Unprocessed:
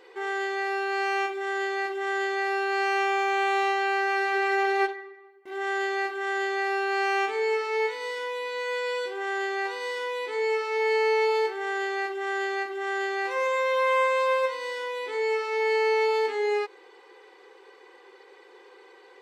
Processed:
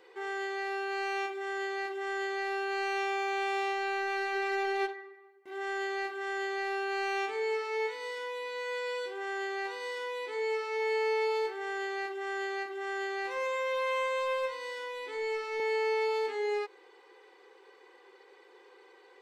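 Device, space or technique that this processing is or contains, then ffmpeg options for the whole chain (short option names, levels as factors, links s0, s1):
one-band saturation: -filter_complex "[0:a]acrossover=split=530|2300[s0][s1][s2];[s1]asoftclip=type=tanh:threshold=0.0501[s3];[s0][s3][s2]amix=inputs=3:normalize=0,asettb=1/sr,asplit=3[s4][s5][s6];[s4]atrim=end=14.374[s7];[s5]atrim=start=14.37:end=15.6,asetpts=PTS-STARTPTS,afade=t=in:d=0.004:c=qsin,afade=t=out:st=1.226:d=0.004:c=qsin,asubboost=boost=11:cutoff=230[s8];[s6]atrim=start=15.596[s9];[s7][s8]acrossfade=d=0.004:c1=hsin:c2=qsin[s10];[s10][s9]acrossfade=d=0.004:c1=qsin:c2=hsin,volume=0.531"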